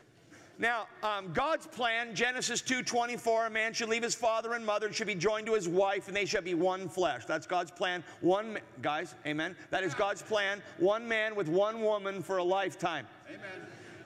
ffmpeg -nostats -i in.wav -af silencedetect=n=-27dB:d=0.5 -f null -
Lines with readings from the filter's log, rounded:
silence_start: 0.00
silence_end: 0.63 | silence_duration: 0.63
silence_start: 12.99
silence_end: 14.05 | silence_duration: 1.06